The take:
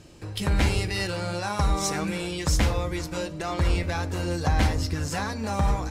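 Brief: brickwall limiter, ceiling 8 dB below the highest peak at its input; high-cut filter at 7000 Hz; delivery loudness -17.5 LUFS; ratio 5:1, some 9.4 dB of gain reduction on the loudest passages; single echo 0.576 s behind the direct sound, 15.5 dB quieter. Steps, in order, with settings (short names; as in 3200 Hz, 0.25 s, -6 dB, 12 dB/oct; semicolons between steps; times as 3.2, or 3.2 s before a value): LPF 7000 Hz; compressor 5:1, threshold -29 dBFS; limiter -25 dBFS; echo 0.576 s -15.5 dB; gain +17 dB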